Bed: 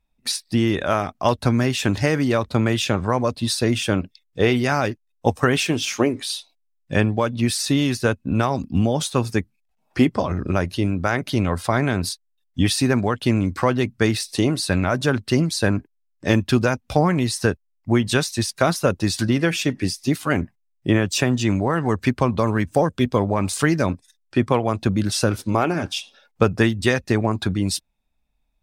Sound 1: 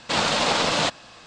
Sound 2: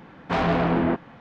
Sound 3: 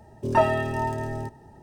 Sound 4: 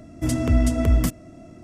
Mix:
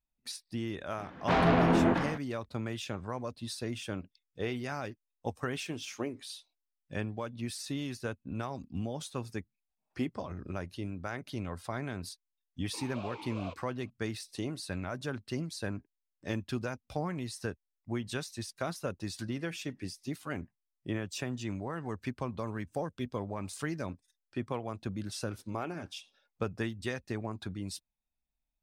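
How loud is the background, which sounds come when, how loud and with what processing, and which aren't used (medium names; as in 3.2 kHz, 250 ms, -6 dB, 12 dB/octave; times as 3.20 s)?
bed -17 dB
0.98 s: add 2 -3 dB + decay stretcher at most 61 dB/s
12.64 s: add 1 -11 dB + talking filter a-u 2.5 Hz
not used: 3, 4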